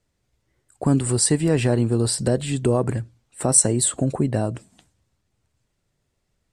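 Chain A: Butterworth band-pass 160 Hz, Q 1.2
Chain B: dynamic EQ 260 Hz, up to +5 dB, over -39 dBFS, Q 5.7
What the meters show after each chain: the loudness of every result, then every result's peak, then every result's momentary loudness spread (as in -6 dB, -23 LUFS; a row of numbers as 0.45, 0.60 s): -26.5, -20.0 LUFS; -11.5, -4.0 dBFS; 9, 10 LU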